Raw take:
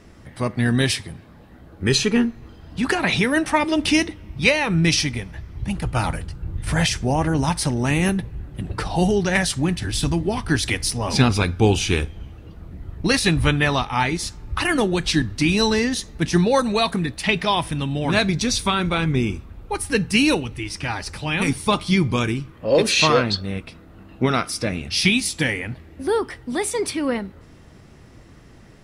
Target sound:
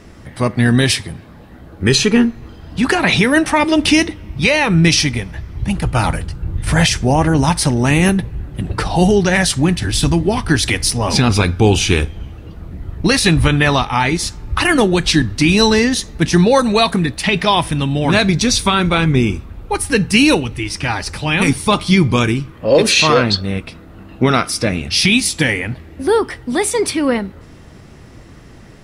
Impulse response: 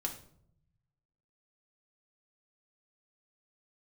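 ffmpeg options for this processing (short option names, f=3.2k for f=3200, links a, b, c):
-af "alimiter=level_in=8dB:limit=-1dB:release=50:level=0:latency=1,volume=-1dB"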